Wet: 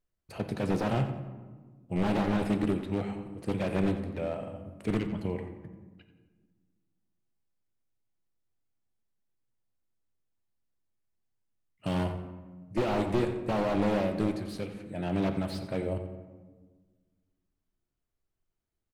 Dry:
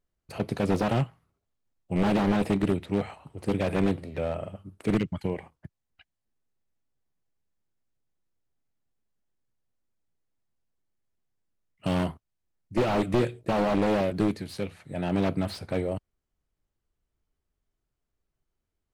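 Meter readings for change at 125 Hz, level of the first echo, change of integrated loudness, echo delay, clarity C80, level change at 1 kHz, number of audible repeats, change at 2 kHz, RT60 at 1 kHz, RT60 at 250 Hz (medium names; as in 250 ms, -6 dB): -2.5 dB, -13.0 dB, -3.0 dB, 89 ms, 9.0 dB, -3.5 dB, 2, -3.5 dB, 1.3 s, 2.2 s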